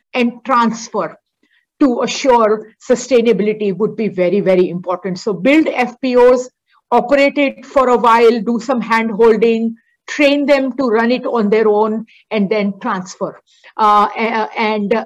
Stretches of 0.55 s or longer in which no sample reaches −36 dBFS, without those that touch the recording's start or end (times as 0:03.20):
0:01.14–0:01.80